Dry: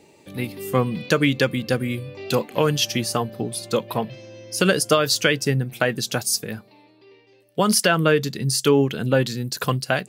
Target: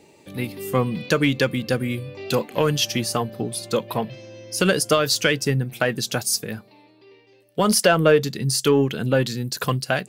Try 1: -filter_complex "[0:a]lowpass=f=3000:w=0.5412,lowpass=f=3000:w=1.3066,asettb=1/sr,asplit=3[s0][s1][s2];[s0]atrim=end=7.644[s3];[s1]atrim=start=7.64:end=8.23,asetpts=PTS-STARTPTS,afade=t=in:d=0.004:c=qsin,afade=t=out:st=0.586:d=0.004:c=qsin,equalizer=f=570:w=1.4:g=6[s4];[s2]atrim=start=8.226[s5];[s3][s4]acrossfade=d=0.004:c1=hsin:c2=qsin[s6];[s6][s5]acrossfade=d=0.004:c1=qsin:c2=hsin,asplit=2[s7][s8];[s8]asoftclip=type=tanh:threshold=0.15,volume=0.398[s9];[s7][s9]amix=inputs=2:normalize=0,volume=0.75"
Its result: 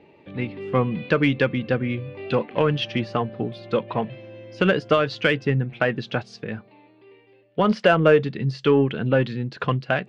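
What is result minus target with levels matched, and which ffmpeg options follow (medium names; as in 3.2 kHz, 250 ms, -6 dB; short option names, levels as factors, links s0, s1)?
4 kHz band -6.0 dB
-filter_complex "[0:a]asettb=1/sr,asplit=3[s0][s1][s2];[s0]atrim=end=7.644[s3];[s1]atrim=start=7.64:end=8.23,asetpts=PTS-STARTPTS,afade=t=in:d=0.004:c=qsin,afade=t=out:st=0.586:d=0.004:c=qsin,equalizer=f=570:w=1.4:g=6[s4];[s2]atrim=start=8.226[s5];[s3][s4]acrossfade=d=0.004:c1=hsin:c2=qsin[s6];[s6][s5]acrossfade=d=0.004:c1=qsin:c2=hsin,asplit=2[s7][s8];[s8]asoftclip=type=tanh:threshold=0.15,volume=0.398[s9];[s7][s9]amix=inputs=2:normalize=0,volume=0.75"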